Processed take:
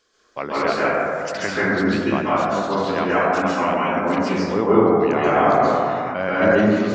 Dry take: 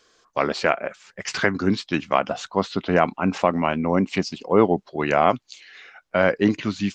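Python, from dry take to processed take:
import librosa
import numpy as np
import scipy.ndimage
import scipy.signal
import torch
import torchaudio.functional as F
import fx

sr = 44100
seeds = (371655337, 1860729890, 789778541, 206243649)

y = fx.tilt_eq(x, sr, slope=2.0, at=(2.7, 4.12))
y = fx.rev_plate(y, sr, seeds[0], rt60_s=2.4, hf_ratio=0.25, predelay_ms=120, drr_db=-9.0)
y = fx.sustainer(y, sr, db_per_s=21.0, at=(5.34, 6.61))
y = y * librosa.db_to_amplitude(-6.5)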